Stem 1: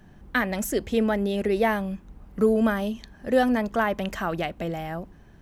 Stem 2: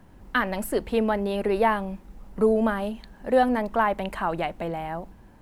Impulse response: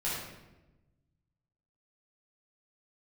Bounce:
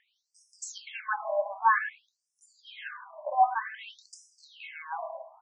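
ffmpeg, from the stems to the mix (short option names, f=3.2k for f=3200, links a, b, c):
-filter_complex "[0:a]volume=-6.5dB,asplit=2[a][b];[b]volume=-3.5dB[c];[1:a]lowpass=f=2.4k:w=0.5412,lowpass=f=2.4k:w=1.3066,lowshelf=f=250:g=-11,adelay=1.8,volume=1.5dB,asplit=2[d][e];[e]volume=-10dB[f];[2:a]atrim=start_sample=2205[g];[c][f]amix=inputs=2:normalize=0[h];[h][g]afir=irnorm=-1:irlink=0[i];[a][d][i]amix=inputs=3:normalize=0,afftfilt=real='re*between(b*sr/1024,780*pow(7200/780,0.5+0.5*sin(2*PI*0.53*pts/sr))/1.41,780*pow(7200/780,0.5+0.5*sin(2*PI*0.53*pts/sr))*1.41)':imag='im*between(b*sr/1024,780*pow(7200/780,0.5+0.5*sin(2*PI*0.53*pts/sr))/1.41,780*pow(7200/780,0.5+0.5*sin(2*PI*0.53*pts/sr))*1.41)':win_size=1024:overlap=0.75"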